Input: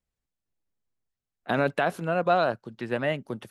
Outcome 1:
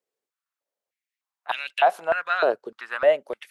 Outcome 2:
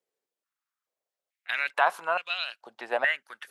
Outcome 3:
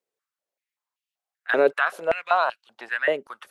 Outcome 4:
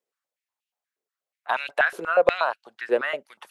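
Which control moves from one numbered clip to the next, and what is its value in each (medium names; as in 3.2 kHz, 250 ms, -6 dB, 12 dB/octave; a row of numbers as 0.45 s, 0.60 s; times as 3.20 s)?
step-sequenced high-pass, rate: 3.3 Hz, 2.3 Hz, 5.2 Hz, 8.3 Hz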